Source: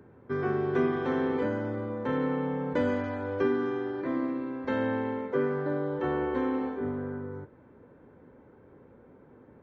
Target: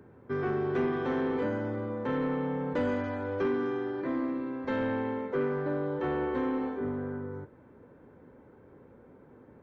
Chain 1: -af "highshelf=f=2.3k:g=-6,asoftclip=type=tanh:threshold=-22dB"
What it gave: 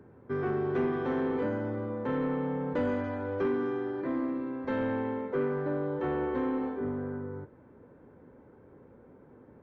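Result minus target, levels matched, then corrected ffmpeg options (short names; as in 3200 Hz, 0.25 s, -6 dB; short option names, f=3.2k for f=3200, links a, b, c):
4000 Hz band -3.5 dB
-af "asoftclip=type=tanh:threshold=-22dB"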